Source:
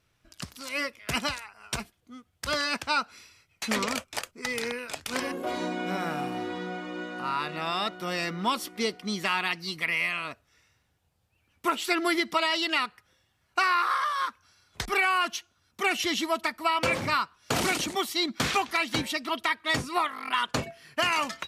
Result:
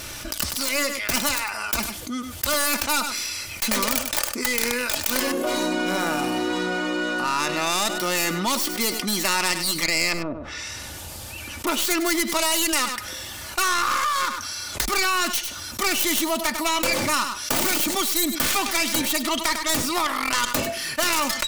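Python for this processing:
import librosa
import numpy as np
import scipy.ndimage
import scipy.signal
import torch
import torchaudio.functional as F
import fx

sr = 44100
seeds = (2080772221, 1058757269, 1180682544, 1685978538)

y = fx.tracing_dist(x, sr, depth_ms=0.22)
y = fx.env_lowpass_down(y, sr, base_hz=430.0, full_db=-34.0, at=(10.12, 11.67))
y = fx.bass_treble(y, sr, bass_db=-3, treble_db=9)
y = y + 0.41 * np.pad(y, (int(3.4 * sr / 1000.0), 0))[:len(y)]
y = y + 10.0 ** (-20.5 / 20.0) * np.pad(y, (int(100 * sr / 1000.0), 0))[:len(y)]
y = fx.env_flatten(y, sr, amount_pct=70)
y = y * 10.0 ** (-2.0 / 20.0)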